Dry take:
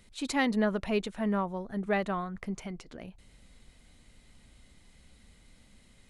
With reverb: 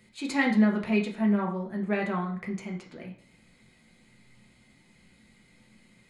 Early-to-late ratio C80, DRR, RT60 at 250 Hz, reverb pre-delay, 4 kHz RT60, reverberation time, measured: 13.0 dB, -1.5 dB, 0.60 s, 3 ms, 0.50 s, 0.55 s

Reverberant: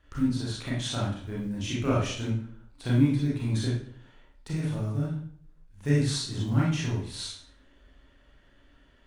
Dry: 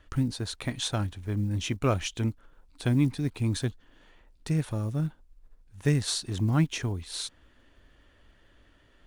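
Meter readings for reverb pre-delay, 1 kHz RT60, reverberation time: 27 ms, 0.55 s, 0.60 s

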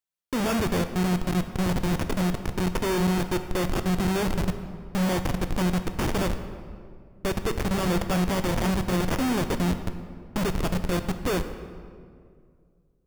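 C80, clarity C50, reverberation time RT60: 11.0 dB, 10.0 dB, 2.1 s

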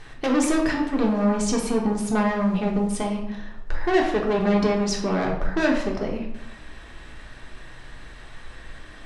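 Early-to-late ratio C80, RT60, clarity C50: 8.5 dB, 1.0 s, 5.5 dB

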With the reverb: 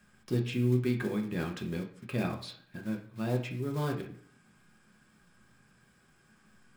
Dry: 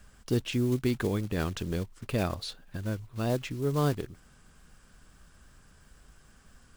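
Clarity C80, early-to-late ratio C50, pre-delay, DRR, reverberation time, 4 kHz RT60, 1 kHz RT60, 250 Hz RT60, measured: 13.5 dB, 9.5 dB, 3 ms, 1.0 dB, 0.55 s, 0.50 s, 0.50 s, 0.60 s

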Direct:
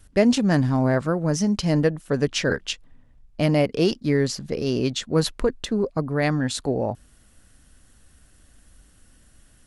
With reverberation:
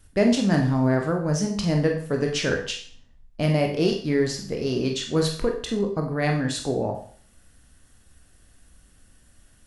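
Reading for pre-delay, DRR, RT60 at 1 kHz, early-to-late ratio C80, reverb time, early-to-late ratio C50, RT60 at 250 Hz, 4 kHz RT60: 20 ms, 2.0 dB, 0.50 s, 11.5 dB, 0.50 s, 7.5 dB, 0.50 s, 0.50 s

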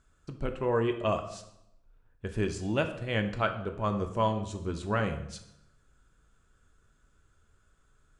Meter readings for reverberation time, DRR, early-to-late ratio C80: 0.80 s, 6.0 dB, 13.5 dB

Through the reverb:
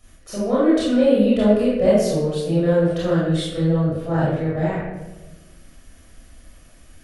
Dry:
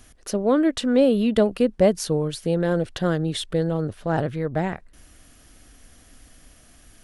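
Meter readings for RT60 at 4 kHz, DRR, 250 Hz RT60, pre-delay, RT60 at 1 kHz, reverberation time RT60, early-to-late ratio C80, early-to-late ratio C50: 0.60 s, -9.5 dB, 1.3 s, 23 ms, 0.95 s, 1.1 s, 2.0 dB, -2.0 dB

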